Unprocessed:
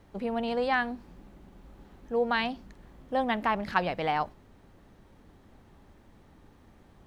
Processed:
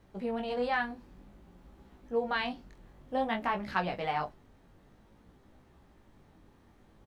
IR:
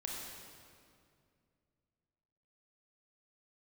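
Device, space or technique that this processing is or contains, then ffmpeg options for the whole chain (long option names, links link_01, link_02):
double-tracked vocal: -filter_complex "[0:a]asplit=2[link_01][link_02];[link_02]adelay=28,volume=-13dB[link_03];[link_01][link_03]amix=inputs=2:normalize=0,flanger=delay=15.5:depth=6.5:speed=0.54,volume=-1dB"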